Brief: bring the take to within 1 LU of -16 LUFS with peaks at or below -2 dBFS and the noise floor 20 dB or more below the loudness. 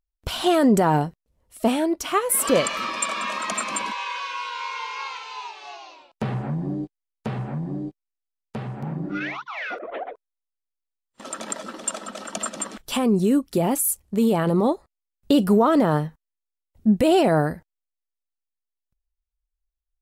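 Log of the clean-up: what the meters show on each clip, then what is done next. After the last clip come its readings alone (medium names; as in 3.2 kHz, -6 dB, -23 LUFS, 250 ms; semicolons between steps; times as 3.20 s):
loudness -23.5 LUFS; peak level -7.5 dBFS; loudness target -16.0 LUFS
-> trim +7.5 dB; peak limiter -2 dBFS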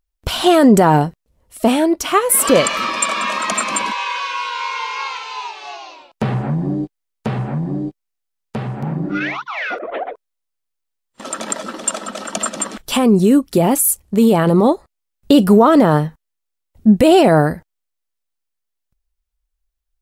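loudness -16.0 LUFS; peak level -2.0 dBFS; noise floor -77 dBFS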